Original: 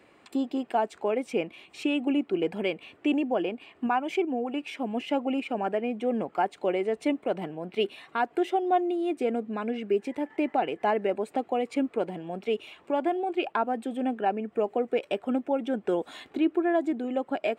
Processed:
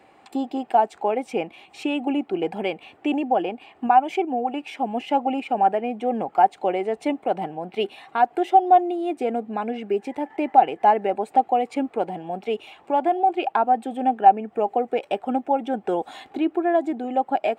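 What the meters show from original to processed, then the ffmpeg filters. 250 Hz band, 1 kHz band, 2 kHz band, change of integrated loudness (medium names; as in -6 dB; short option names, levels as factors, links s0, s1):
+1.5 dB, +11.5 dB, +2.0 dB, +6.0 dB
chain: -af "equalizer=f=790:t=o:w=0.33:g=13.5,volume=1.19"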